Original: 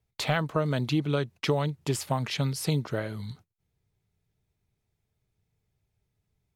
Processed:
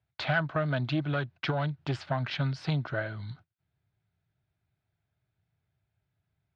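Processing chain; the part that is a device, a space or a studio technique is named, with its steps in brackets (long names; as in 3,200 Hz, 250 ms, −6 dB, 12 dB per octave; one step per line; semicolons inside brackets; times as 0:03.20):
guitar amplifier (tube saturation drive 17 dB, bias 0.55; bass and treble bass +4 dB, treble +2 dB; loudspeaker in its box 91–4,100 Hz, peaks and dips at 210 Hz −8 dB, 450 Hz −8 dB, 670 Hz +6 dB, 1,500 Hz +10 dB)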